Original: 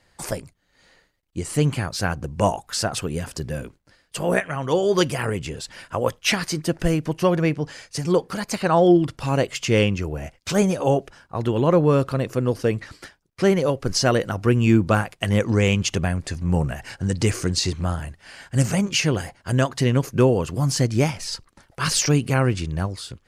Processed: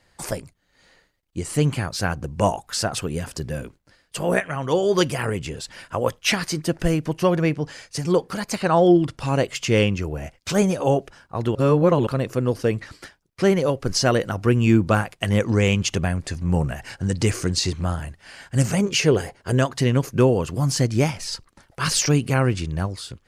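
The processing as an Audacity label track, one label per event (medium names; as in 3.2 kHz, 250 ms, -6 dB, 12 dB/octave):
8.570000	9.420000	low-pass 12 kHz 24 dB/octave
11.550000	12.070000	reverse
18.800000	19.590000	peaking EQ 430 Hz +11 dB 0.5 oct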